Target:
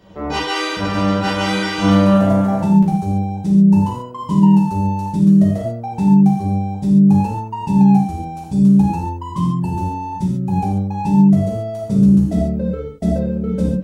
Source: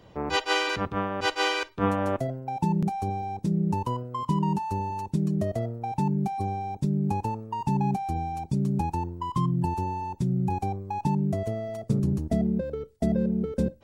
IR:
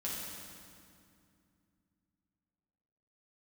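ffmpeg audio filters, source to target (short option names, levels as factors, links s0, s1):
-filter_complex "[0:a]asettb=1/sr,asplit=3[s0][s1][s2];[s0]atrim=end=0.614[s3];[s1]atrim=start=0.61:end=2.63,asetpts=PTS-STARTPTS,afade=t=in:d=0.004:c=qsin,afade=t=out:st=2.016:d=0.004:c=qsin,aecho=1:1:240|384|470.4|522.2|553.3:0.631|0.398|0.251|0.158|0.1,atrim=end_sample=89082[s4];[s2]atrim=start=2.626[s5];[s3][s4]acrossfade=d=0.004:c1=hsin:c2=qsin[s6];[s6][s5]acrossfade=d=0.004:c1=qsin:c2=hsin[s7];[1:a]atrim=start_sample=2205,atrim=end_sample=6615[s8];[s7][s8]afir=irnorm=-1:irlink=0,volume=2"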